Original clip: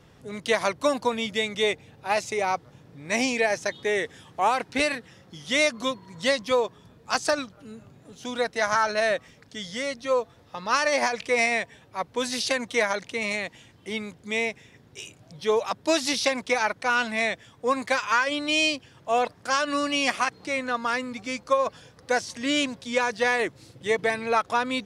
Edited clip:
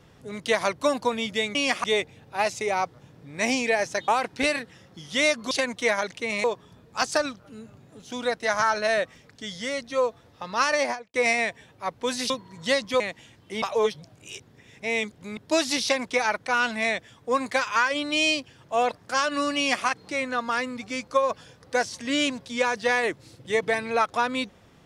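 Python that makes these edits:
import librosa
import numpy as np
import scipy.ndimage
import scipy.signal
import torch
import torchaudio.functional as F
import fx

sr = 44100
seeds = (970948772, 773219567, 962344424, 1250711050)

y = fx.studio_fade_out(x, sr, start_s=10.89, length_s=0.38)
y = fx.edit(y, sr, fx.cut(start_s=3.79, length_s=0.65),
    fx.swap(start_s=5.87, length_s=0.7, other_s=12.43, other_length_s=0.93),
    fx.reverse_span(start_s=13.98, length_s=1.75),
    fx.duplicate(start_s=19.93, length_s=0.29, to_s=1.55), tone=tone)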